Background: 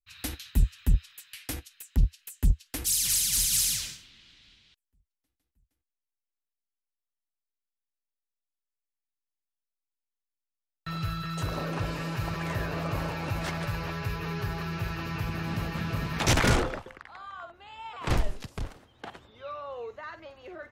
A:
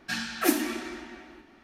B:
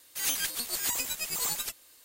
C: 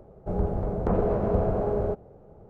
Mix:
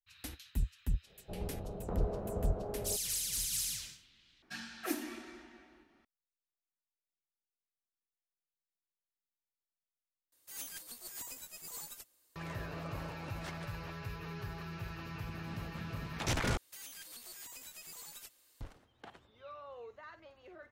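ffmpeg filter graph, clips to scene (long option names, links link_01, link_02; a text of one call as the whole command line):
ffmpeg -i bed.wav -i cue0.wav -i cue1.wav -i cue2.wav -filter_complex "[2:a]asplit=2[link_01][link_02];[0:a]volume=-10.5dB[link_03];[link_01]equalizer=frequency=2800:width=0.63:gain=-5.5[link_04];[link_02]acompressor=threshold=-34dB:ratio=6:attack=3.2:release=140:knee=1:detection=peak[link_05];[link_03]asplit=4[link_06][link_07][link_08][link_09];[link_06]atrim=end=4.424[link_10];[1:a]atrim=end=1.63,asetpts=PTS-STARTPTS,volume=-13dB[link_11];[link_07]atrim=start=6.046:end=10.324[link_12];[link_04]atrim=end=2.04,asetpts=PTS-STARTPTS,volume=-13.5dB[link_13];[link_08]atrim=start=12.356:end=16.574[link_14];[link_05]atrim=end=2.04,asetpts=PTS-STARTPTS,volume=-10.5dB[link_15];[link_09]atrim=start=18.606[link_16];[3:a]atrim=end=2.49,asetpts=PTS-STARTPTS,volume=-14dB,afade=type=in:duration=0.1,afade=type=out:start_time=2.39:duration=0.1,adelay=1020[link_17];[link_10][link_11]acrossfade=duration=0.004:curve1=hsin:curve2=hsin[link_18];[link_18][link_12]acrossfade=duration=0.004:curve1=hsin:curve2=hsin[link_19];[link_19][link_13]acrossfade=duration=0.004:curve1=hsin:curve2=hsin[link_20];[link_20][link_14]acrossfade=duration=0.004:curve1=hsin:curve2=hsin[link_21];[link_21][link_15]acrossfade=duration=0.004:curve1=hsin:curve2=hsin[link_22];[link_22][link_16]acrossfade=duration=0.004:curve1=hsin:curve2=hsin[link_23];[link_23][link_17]amix=inputs=2:normalize=0" out.wav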